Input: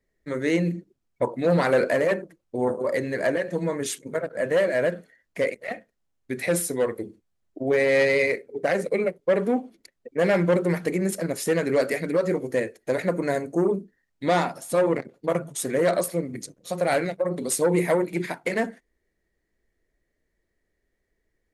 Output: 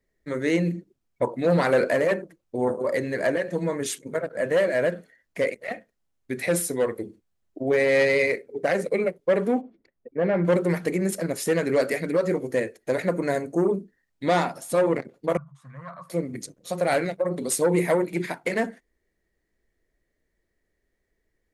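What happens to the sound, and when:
9.61–10.45 tape spacing loss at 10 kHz 39 dB
15.37–16.1 double band-pass 390 Hz, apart 3 oct

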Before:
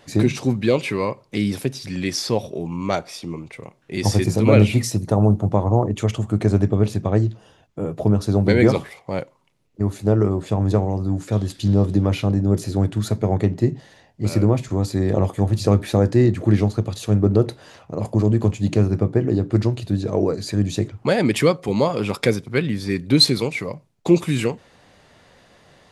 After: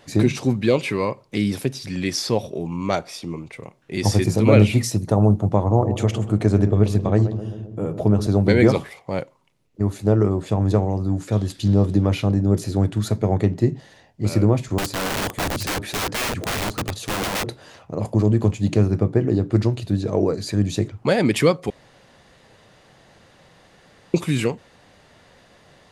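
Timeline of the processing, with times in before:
5.58–8.27 darkening echo 0.131 s, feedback 69%, low-pass 900 Hz, level -10 dB
14.78–17.44 wrapped overs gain 19.5 dB
21.7–24.14 room tone

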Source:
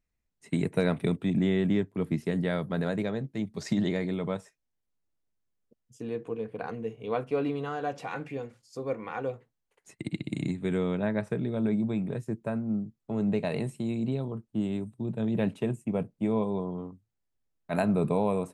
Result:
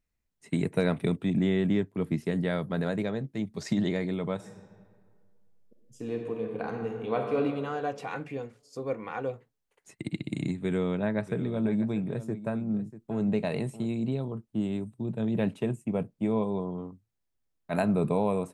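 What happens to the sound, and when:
4.35–7.39 reverb throw, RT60 1.9 s, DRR 2.5 dB
10.54–13.86 echo 0.641 s -14.5 dB

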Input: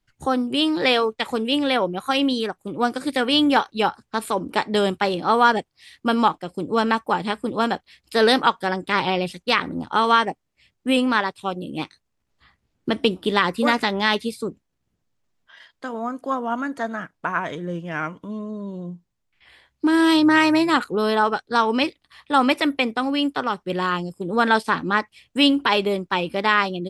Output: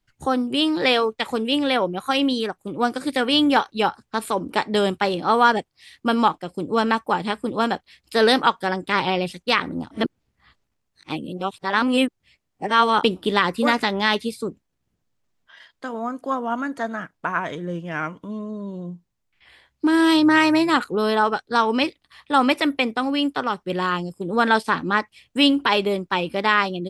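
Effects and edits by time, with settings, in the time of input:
9.91–13.03 reverse

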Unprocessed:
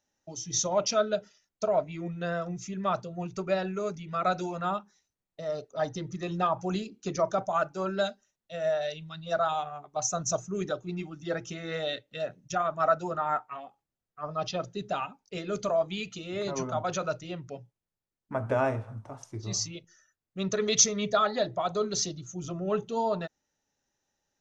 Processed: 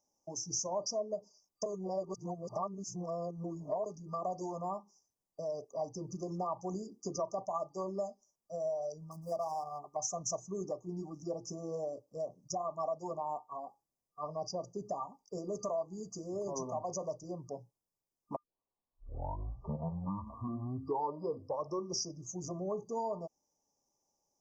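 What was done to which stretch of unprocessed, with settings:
1.66–3.86 reverse
9.11–9.79 median filter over 15 samples
18.36 tape start 3.89 s
whole clip: FFT band-reject 1200–4700 Hz; low shelf 210 Hz -9 dB; compressor 2.5:1, threshold -38 dBFS; gain +1 dB

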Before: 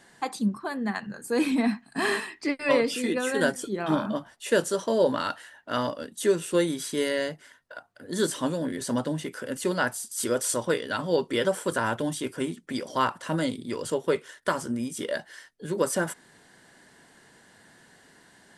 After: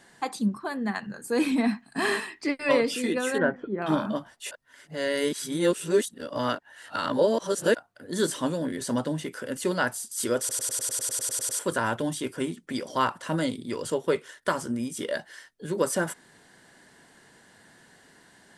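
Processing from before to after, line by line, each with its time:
3.38–3.82 LPF 2000 Hz 24 dB/oct
4.51–7.75 reverse
10.39 stutter in place 0.10 s, 12 plays

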